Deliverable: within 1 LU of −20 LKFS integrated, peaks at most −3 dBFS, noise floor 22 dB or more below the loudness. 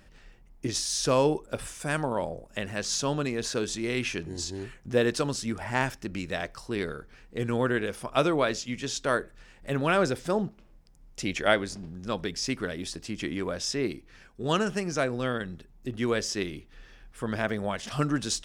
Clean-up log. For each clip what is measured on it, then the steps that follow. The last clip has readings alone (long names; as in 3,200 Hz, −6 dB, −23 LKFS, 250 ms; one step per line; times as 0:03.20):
integrated loudness −29.5 LKFS; sample peak −8.0 dBFS; target loudness −20.0 LKFS
→ level +9.5 dB
brickwall limiter −3 dBFS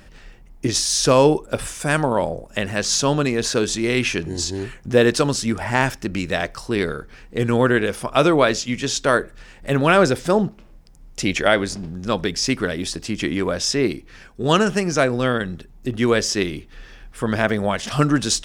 integrated loudness −20.5 LKFS; sample peak −3.0 dBFS; background noise floor −46 dBFS